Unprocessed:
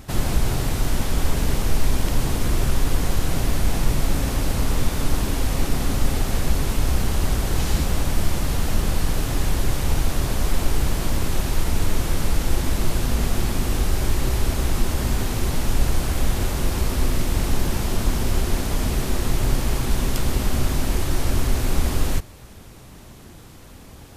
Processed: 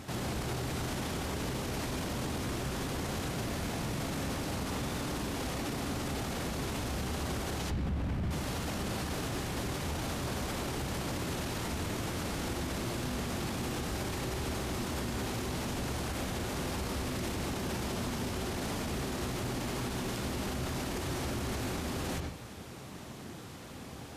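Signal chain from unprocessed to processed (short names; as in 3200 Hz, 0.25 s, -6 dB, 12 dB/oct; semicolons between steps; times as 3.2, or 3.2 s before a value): HPF 100 Hz 12 dB/oct; high shelf 11000 Hz -10 dB; notches 50/100/150 Hz; 7.7–8.31 tone controls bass +12 dB, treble -13 dB; reverb RT60 0.40 s, pre-delay 57 ms, DRR 9.5 dB; limiter -27 dBFS, peak gain reduction 19 dB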